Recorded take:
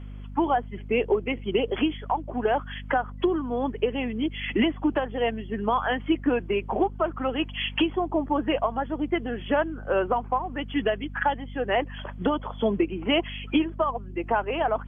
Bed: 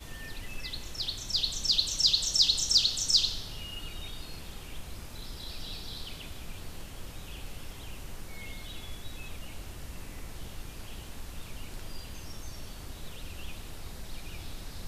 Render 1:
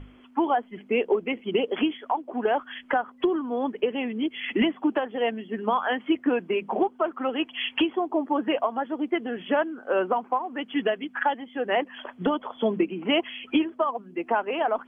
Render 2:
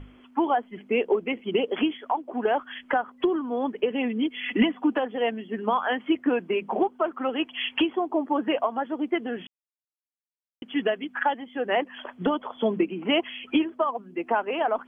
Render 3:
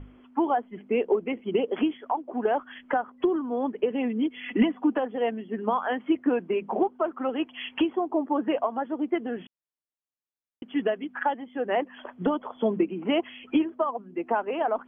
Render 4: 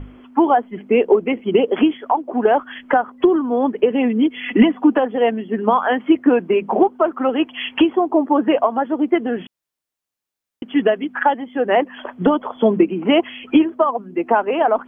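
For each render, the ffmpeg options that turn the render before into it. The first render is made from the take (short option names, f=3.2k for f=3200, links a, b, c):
-af "bandreject=f=50:t=h:w=6,bandreject=f=100:t=h:w=6,bandreject=f=150:t=h:w=6,bandreject=f=200:t=h:w=6"
-filter_complex "[0:a]asettb=1/sr,asplit=3[a][b][c];[a]atrim=end=3.904[d];[b]atrim=start=3.9:end=5.14,asetpts=PTS-STARTPTS,afade=t=in:d=0.004:c=qsin,afade=t=out:st=1.236:d=0.004:c=qsin,aecho=1:1:4.1:0.45,atrim=end_sample=54684[e];[c]atrim=start=5.136[f];[d][e]acrossfade=d=0.004:c1=hsin:c2=qsin[g];[g][f]acrossfade=d=0.004:c1=qsin:c2=hsin,asplit=3[h][i][j];[h]atrim=end=9.47,asetpts=PTS-STARTPTS,afade=t=out:st=9.466:d=0.004:c=hsin[k];[i]atrim=start=9.47:end=10.62,asetpts=PTS-STARTPTS,volume=0[l];[j]atrim=start=10.62,asetpts=PTS-STARTPTS,afade=t=in:d=0.004:c=hsin[m];[k][l][m]concat=n=3:v=0:a=1"
-af "highshelf=f=2.2k:g=-11.5"
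-af "volume=10dB,alimiter=limit=-2dB:level=0:latency=1"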